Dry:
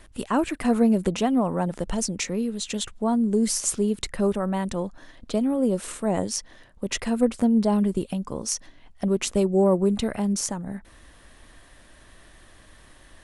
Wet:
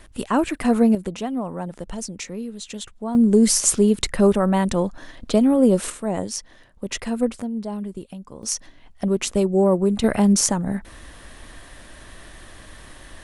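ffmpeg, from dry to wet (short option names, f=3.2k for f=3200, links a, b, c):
-af "asetnsamples=n=441:p=0,asendcmd='0.95 volume volume -4.5dB;3.15 volume volume 7dB;5.9 volume volume -0.5dB;7.42 volume volume -8dB;8.43 volume volume 2dB;10.04 volume volume 8.5dB',volume=3dB"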